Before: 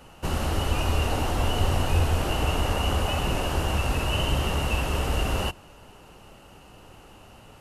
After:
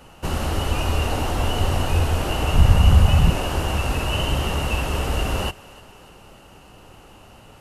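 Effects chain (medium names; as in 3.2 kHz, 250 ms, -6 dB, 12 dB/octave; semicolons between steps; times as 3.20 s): 2.54–3.30 s: resonant low shelf 220 Hz +10 dB, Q 1.5; thinning echo 299 ms, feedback 58%, level -20 dB; trim +2.5 dB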